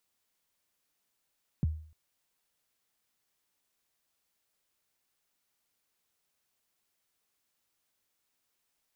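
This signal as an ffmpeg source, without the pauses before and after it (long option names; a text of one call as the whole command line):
ffmpeg -f lavfi -i "aevalsrc='0.0794*pow(10,-3*t/0.49)*sin(2*PI*(210*0.021/log(78/210)*(exp(log(78/210)*min(t,0.021)/0.021)-1)+78*max(t-0.021,0)))':duration=0.3:sample_rate=44100" out.wav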